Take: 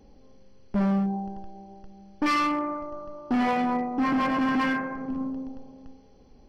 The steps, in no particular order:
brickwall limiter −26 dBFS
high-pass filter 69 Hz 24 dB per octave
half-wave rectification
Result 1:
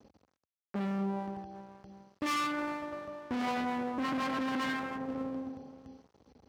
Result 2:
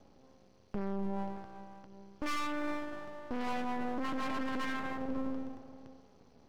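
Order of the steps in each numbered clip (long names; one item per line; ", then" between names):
half-wave rectification, then high-pass filter, then brickwall limiter
high-pass filter, then half-wave rectification, then brickwall limiter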